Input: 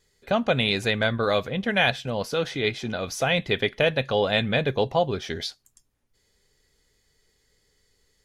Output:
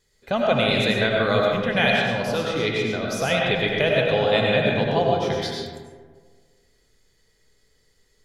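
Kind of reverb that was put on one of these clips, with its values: algorithmic reverb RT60 1.6 s, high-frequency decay 0.45×, pre-delay 55 ms, DRR -2 dB; trim -1 dB

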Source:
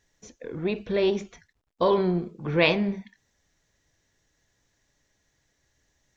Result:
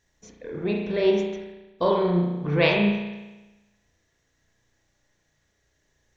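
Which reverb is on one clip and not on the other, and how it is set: spring tank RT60 1.1 s, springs 34 ms, chirp 35 ms, DRR -0.5 dB; trim -1.5 dB

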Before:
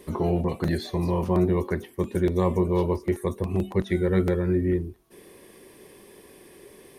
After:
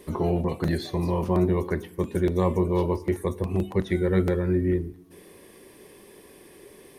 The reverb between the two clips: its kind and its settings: FDN reverb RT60 1 s, low-frequency decay 1.5×, high-frequency decay 0.8×, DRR 19 dB

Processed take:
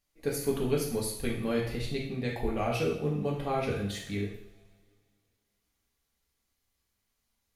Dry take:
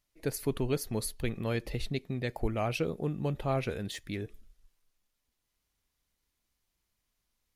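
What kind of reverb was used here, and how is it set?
two-slope reverb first 0.64 s, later 2.5 s, from -24 dB, DRR -3.5 dB; trim -3 dB

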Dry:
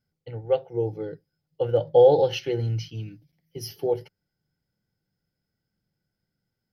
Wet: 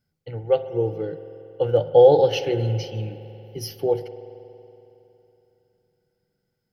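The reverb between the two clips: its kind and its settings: spring tank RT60 3.2 s, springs 46 ms, chirp 65 ms, DRR 11.5 dB; trim +3 dB

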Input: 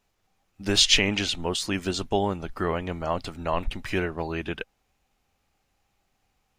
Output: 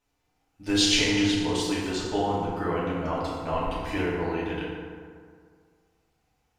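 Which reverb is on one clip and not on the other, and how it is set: FDN reverb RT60 2 s, low-frequency decay 1×, high-frequency decay 0.5×, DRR -7.5 dB; trim -8.5 dB

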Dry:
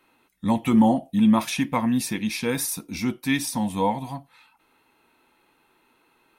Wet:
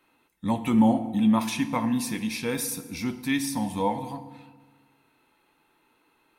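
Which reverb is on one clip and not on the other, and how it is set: FDN reverb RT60 1.4 s, low-frequency decay 1.2×, high-frequency decay 0.7×, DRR 10 dB; trim -3.5 dB

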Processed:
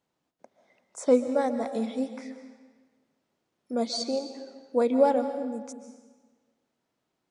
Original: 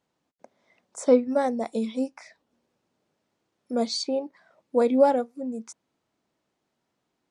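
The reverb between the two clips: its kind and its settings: algorithmic reverb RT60 1.4 s, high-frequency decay 0.9×, pre-delay 100 ms, DRR 8.5 dB; trim -2.5 dB

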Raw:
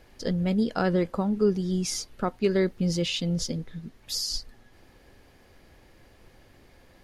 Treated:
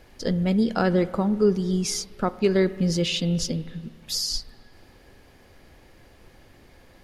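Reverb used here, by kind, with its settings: spring tank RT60 1.9 s, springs 31/53 ms, chirp 25 ms, DRR 15.5 dB; trim +3 dB

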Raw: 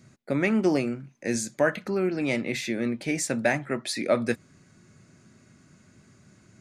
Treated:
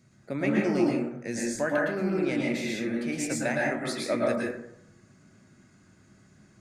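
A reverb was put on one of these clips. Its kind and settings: plate-style reverb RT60 0.75 s, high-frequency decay 0.4×, pre-delay 100 ms, DRR -3.5 dB; trim -6.5 dB

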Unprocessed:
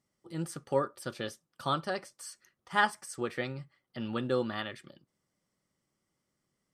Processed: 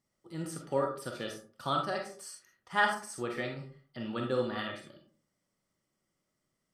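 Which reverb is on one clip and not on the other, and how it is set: algorithmic reverb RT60 0.44 s, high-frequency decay 0.45×, pre-delay 5 ms, DRR 1.5 dB; trim -2.5 dB

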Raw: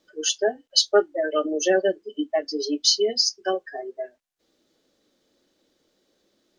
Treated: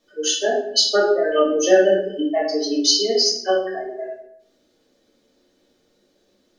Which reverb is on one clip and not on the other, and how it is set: simulated room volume 160 m³, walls mixed, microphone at 1.7 m; trim -2 dB

